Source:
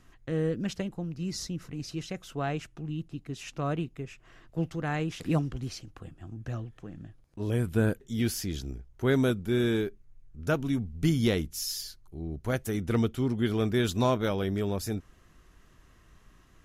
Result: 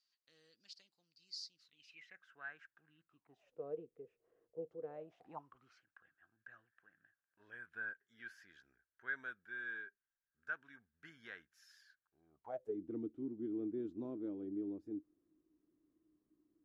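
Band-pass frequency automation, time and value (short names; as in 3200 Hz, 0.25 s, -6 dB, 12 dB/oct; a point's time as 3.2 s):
band-pass, Q 13
1.6 s 4600 Hz
2.16 s 1600 Hz
3.01 s 1600 Hz
3.56 s 470 Hz
4.86 s 470 Hz
5.82 s 1600 Hz
12.26 s 1600 Hz
12.8 s 310 Hz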